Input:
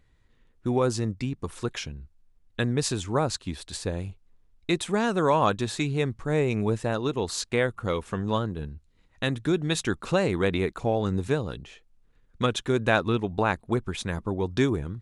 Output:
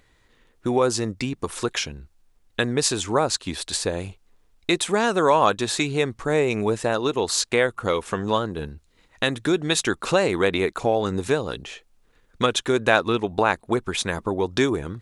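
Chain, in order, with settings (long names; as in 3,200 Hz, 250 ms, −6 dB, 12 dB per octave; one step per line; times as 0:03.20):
bass and treble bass −10 dB, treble +2 dB
in parallel at +2 dB: downward compressor, threshold −34 dBFS, peak gain reduction 16.5 dB
on the sum: level +3 dB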